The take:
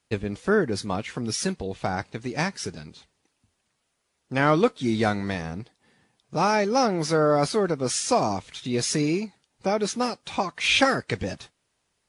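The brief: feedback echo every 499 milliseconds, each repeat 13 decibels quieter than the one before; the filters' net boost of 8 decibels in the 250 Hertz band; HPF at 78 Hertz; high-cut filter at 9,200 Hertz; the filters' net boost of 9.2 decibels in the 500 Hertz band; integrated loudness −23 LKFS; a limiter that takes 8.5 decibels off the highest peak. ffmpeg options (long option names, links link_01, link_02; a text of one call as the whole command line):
ffmpeg -i in.wav -af "highpass=78,lowpass=9200,equalizer=frequency=250:width_type=o:gain=7.5,equalizer=frequency=500:width_type=o:gain=9,alimiter=limit=-7.5dB:level=0:latency=1,aecho=1:1:499|998|1497:0.224|0.0493|0.0108,volume=-3dB" out.wav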